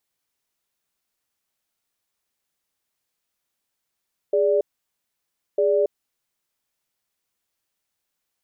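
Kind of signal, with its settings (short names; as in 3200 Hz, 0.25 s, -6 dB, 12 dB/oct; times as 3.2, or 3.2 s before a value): cadence 412 Hz, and 584 Hz, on 0.28 s, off 0.97 s, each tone -19 dBFS 2.19 s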